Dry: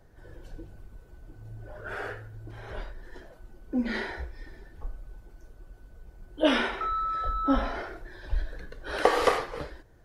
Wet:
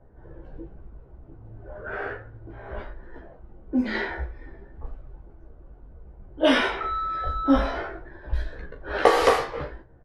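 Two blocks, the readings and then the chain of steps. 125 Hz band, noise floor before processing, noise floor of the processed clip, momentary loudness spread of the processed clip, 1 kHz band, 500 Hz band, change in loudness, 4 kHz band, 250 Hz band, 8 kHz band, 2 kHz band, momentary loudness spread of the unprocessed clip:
+3.5 dB, -54 dBFS, -50 dBFS, 23 LU, +3.5 dB, +5.0 dB, +4.5 dB, +4.0 dB, +4.5 dB, +4.0 dB, +4.5 dB, 23 LU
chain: low-pass opened by the level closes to 990 Hz, open at -21 dBFS; early reflections 15 ms -3 dB, 39 ms -10.5 dB; gain +2.5 dB

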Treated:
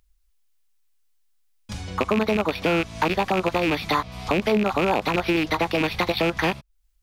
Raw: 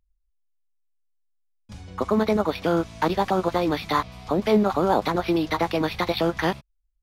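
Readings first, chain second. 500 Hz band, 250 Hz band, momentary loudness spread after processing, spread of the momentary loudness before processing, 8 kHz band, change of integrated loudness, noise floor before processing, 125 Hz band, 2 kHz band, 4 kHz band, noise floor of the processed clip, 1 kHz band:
-0.5 dB, -0.5 dB, 4 LU, 6 LU, +3.0 dB, +0.5 dB, -72 dBFS, +0.5 dB, +5.5 dB, +3.5 dB, -65 dBFS, 0.0 dB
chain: rattling part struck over -29 dBFS, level -15 dBFS; compressor 2.5:1, threshold -28 dBFS, peak gain reduction 9.5 dB; mismatched tape noise reduction encoder only; gain +6.5 dB

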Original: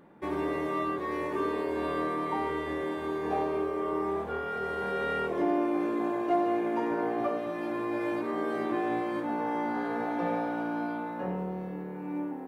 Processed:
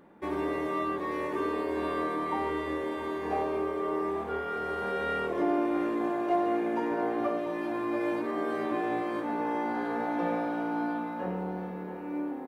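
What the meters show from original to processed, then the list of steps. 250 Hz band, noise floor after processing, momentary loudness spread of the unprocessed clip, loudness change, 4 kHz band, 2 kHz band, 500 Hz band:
0.0 dB, -37 dBFS, 6 LU, 0.0 dB, +0.5 dB, 0.0 dB, 0.0 dB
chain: bell 140 Hz -12.5 dB 0.21 oct; on a send: feedback echo 0.684 s, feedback 54%, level -13 dB

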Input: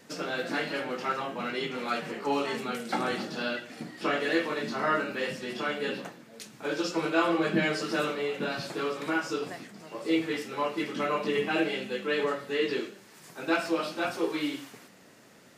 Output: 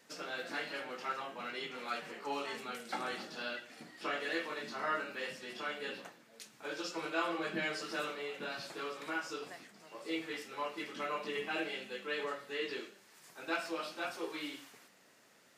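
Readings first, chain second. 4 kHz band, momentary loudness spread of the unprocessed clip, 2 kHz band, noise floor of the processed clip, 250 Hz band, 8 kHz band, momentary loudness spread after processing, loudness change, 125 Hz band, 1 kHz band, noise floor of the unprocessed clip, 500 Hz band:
-6.5 dB, 11 LU, -7.0 dB, -64 dBFS, -13.5 dB, -6.5 dB, 12 LU, -9.0 dB, -16.0 dB, -8.0 dB, -55 dBFS, -11.0 dB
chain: low shelf 390 Hz -11 dB; gain -6.5 dB

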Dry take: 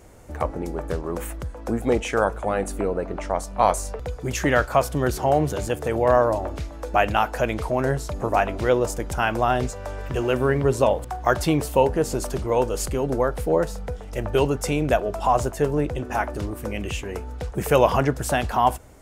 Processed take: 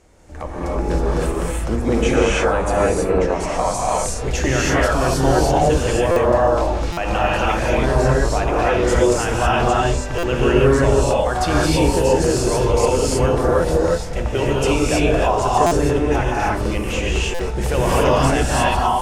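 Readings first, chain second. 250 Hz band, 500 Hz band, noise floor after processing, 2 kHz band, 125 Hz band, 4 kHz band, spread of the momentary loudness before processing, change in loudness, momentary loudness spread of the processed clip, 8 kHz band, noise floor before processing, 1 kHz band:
+6.0 dB, +5.0 dB, -25 dBFS, +5.5 dB, +7.0 dB, +9.0 dB, 10 LU, +5.5 dB, 6 LU, +8.0 dB, -37 dBFS, +4.0 dB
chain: octaver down 2 oct, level -4 dB; high shelf 3300 Hz +9.5 dB; notches 50/100/150/200/250 Hz; limiter -12.5 dBFS, peak gain reduction 9.5 dB; AGC gain up to 6.5 dB; air absorption 73 m; non-linear reverb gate 0.35 s rising, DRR -6 dB; stuck buffer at 6.11/6.92/10.18/15.66/17.34, samples 256, times 8; gain -5.5 dB

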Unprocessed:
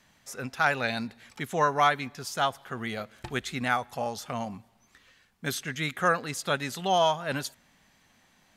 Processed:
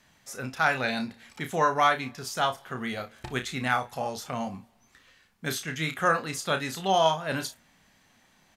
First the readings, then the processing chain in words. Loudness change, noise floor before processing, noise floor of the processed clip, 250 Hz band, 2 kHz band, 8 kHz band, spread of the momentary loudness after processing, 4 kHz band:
+0.5 dB, -64 dBFS, -64 dBFS, +1.0 dB, +0.5 dB, +1.0 dB, 14 LU, +1.0 dB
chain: early reflections 31 ms -7.5 dB, 57 ms -17 dB

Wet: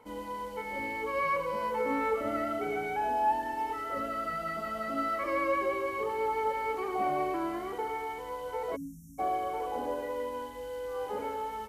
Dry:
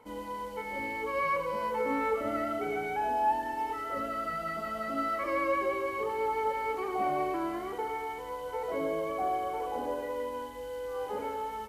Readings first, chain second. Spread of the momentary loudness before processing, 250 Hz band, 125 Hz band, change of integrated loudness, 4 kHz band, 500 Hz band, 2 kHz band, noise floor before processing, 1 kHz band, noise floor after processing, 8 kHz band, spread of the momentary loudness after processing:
8 LU, 0.0 dB, 0.0 dB, 0.0 dB, 0.0 dB, -0.5 dB, 0.0 dB, -40 dBFS, 0.0 dB, -42 dBFS, 0.0 dB, 8 LU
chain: spectral delete 8.76–9.19, 290–5400 Hz

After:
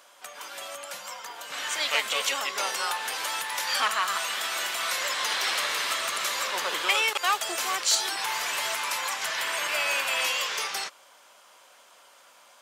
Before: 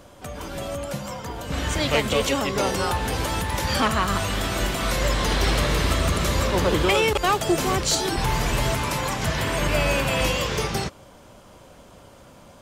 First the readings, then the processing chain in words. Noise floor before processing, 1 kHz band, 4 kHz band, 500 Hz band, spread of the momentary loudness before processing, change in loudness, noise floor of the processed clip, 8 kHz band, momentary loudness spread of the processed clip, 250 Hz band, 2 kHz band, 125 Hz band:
-49 dBFS, -4.0 dB, 0.0 dB, -13.0 dB, 10 LU, -3.5 dB, -56 dBFS, 0.0 dB, 14 LU, -23.5 dB, -0.5 dB, under -35 dB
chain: HPF 1100 Hz 12 dB/oct

